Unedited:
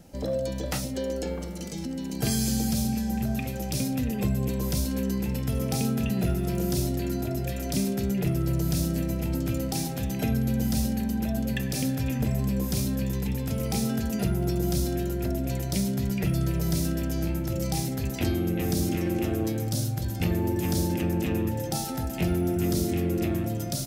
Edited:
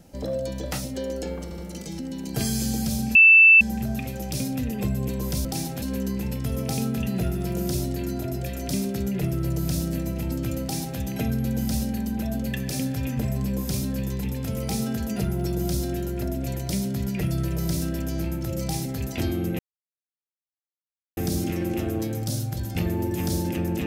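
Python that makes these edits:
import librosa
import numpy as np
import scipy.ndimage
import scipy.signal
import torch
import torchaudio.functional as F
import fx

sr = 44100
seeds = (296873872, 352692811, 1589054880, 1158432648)

y = fx.edit(x, sr, fx.stutter(start_s=1.44, slice_s=0.07, count=3),
    fx.insert_tone(at_s=3.01, length_s=0.46, hz=2650.0, db=-9.0),
    fx.duplicate(start_s=9.65, length_s=0.37, to_s=4.85),
    fx.insert_silence(at_s=18.62, length_s=1.58), tone=tone)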